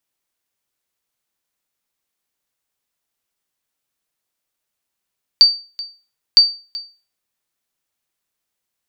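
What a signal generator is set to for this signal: sonar ping 4620 Hz, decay 0.34 s, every 0.96 s, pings 2, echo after 0.38 s, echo -19.5 dB -1 dBFS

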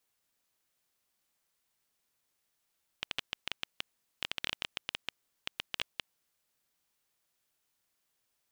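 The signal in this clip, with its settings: random clicks 9.5/s -15 dBFS 3.23 s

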